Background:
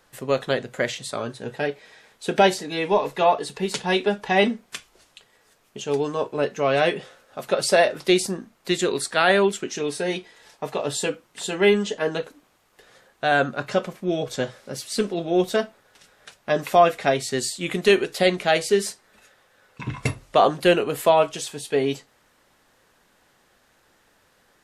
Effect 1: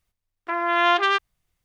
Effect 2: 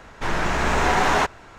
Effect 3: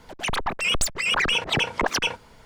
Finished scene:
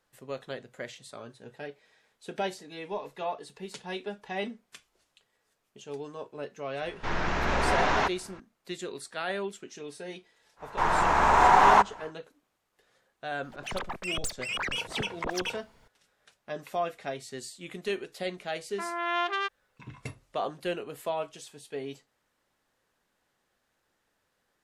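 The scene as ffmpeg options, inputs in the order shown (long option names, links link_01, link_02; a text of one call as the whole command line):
ffmpeg -i bed.wav -i cue0.wav -i cue1.wav -i cue2.wav -filter_complex "[2:a]asplit=2[link_01][link_02];[0:a]volume=-15dB[link_03];[link_01]lowpass=frequency=5900:width=0.5412,lowpass=frequency=5900:width=1.3066[link_04];[link_02]equalizer=frequency=940:width_type=o:width=1.2:gain=13.5[link_05];[link_04]atrim=end=1.58,asetpts=PTS-STARTPTS,volume=-6dB,afade=type=in:duration=0.004:curve=hsin,afade=type=out:start_time=1.576:duration=0.004:curve=hsin,adelay=300762S[link_06];[link_05]atrim=end=1.58,asetpts=PTS-STARTPTS,volume=-8dB,afade=type=in:duration=0.1,afade=type=out:start_time=1.48:duration=0.1,adelay=10560[link_07];[3:a]atrim=end=2.45,asetpts=PTS-STARTPTS,volume=-10dB,afade=type=in:duration=0.004:curve=hsin,afade=type=out:start_time=2.446:duration=0.004:curve=hsin,adelay=13430[link_08];[1:a]atrim=end=1.64,asetpts=PTS-STARTPTS,volume=-10dB,afade=type=in:duration=0.004:curve=hsin,afade=type=out:start_time=1.636:duration=0.004:curve=hsin,adelay=18300[link_09];[link_03][link_06][link_07][link_08][link_09]amix=inputs=5:normalize=0" out.wav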